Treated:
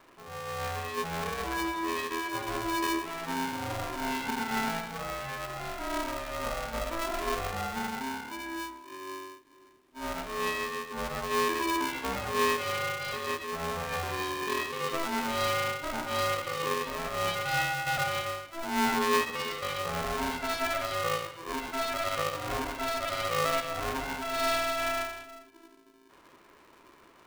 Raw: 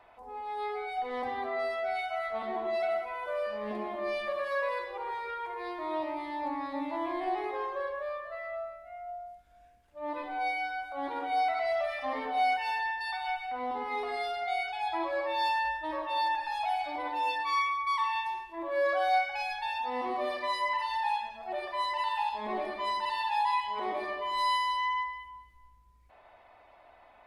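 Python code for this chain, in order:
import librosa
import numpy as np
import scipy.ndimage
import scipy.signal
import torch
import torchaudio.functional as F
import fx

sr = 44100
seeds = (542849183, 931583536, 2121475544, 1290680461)

p1 = fx.sample_hold(x, sr, seeds[0], rate_hz=1600.0, jitter_pct=0)
p2 = x + (p1 * librosa.db_to_amplitude(-11.0))
y = p2 * np.sign(np.sin(2.0 * np.pi * 330.0 * np.arange(len(p2)) / sr))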